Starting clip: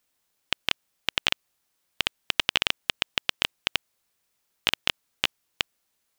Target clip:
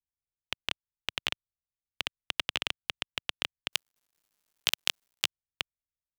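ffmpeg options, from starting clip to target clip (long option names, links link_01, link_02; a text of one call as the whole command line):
ffmpeg -i in.wav -filter_complex "[0:a]asplit=3[link_01][link_02][link_03];[link_01]afade=type=out:start_time=3.71:duration=0.02[link_04];[link_02]bass=frequency=250:gain=-12,treble=frequency=4000:gain=14,afade=type=in:start_time=3.71:duration=0.02,afade=type=out:start_time=5.25:duration=0.02[link_05];[link_03]afade=type=in:start_time=5.25:duration=0.02[link_06];[link_04][link_05][link_06]amix=inputs=3:normalize=0,acrossover=split=140[link_07][link_08];[link_08]acrusher=bits=6:dc=4:mix=0:aa=0.000001[link_09];[link_07][link_09]amix=inputs=2:normalize=0,volume=-7.5dB" out.wav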